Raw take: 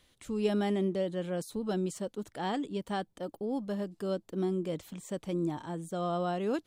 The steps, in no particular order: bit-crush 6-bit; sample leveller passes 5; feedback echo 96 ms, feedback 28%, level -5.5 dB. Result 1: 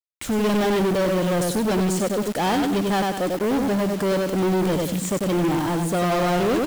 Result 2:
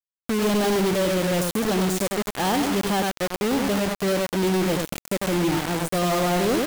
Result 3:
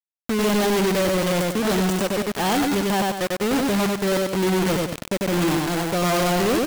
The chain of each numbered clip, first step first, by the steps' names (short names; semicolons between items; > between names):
feedback echo > sample leveller > bit-crush; feedback echo > bit-crush > sample leveller; bit-crush > feedback echo > sample leveller